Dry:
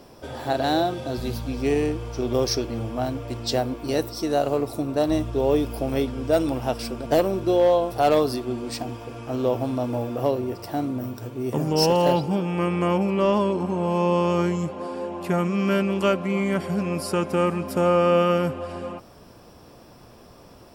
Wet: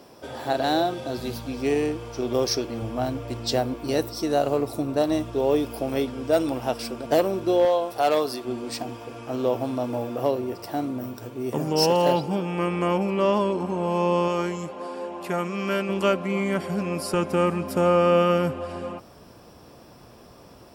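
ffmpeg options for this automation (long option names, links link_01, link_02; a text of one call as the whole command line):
ffmpeg -i in.wav -af "asetnsamples=nb_out_samples=441:pad=0,asendcmd='2.82 highpass f 58;5.02 highpass f 190;7.65 highpass f 510;8.45 highpass f 190;14.28 highpass f 410;15.89 highpass f 160;17.14 highpass f 44',highpass=frequency=180:poles=1" out.wav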